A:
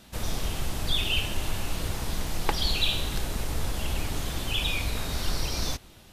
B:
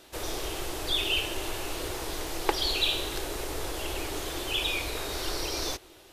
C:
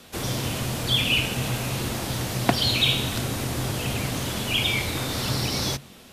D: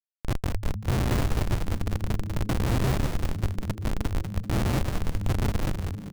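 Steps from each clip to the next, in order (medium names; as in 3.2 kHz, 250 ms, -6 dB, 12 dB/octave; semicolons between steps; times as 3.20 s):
resonant low shelf 270 Hz -8.5 dB, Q 3
frequency shift -140 Hz; trim +5.5 dB
one-bit delta coder 64 kbps, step -33.5 dBFS; Schmitt trigger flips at -18.5 dBFS; frequency-shifting echo 194 ms, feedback 38%, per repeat -110 Hz, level -5 dB; trim +3 dB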